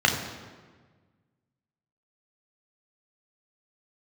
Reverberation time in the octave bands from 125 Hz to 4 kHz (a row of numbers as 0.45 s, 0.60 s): 2.0 s, 1.8 s, 1.5 s, 1.4 s, 1.3 s, 1.0 s